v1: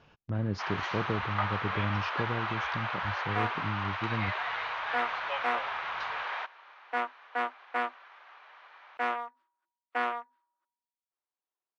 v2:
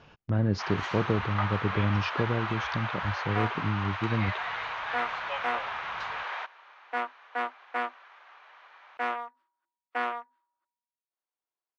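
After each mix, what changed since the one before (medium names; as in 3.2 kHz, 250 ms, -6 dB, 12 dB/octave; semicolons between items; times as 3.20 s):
speech +5.5 dB; first sound: remove low-pass 6.2 kHz 24 dB/octave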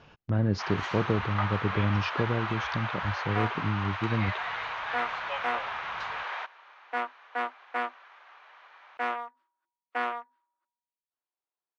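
no change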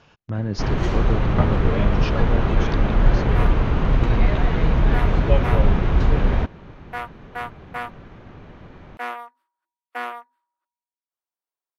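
first sound: remove high-pass 900 Hz 24 dB/octave; master: remove distance through air 97 m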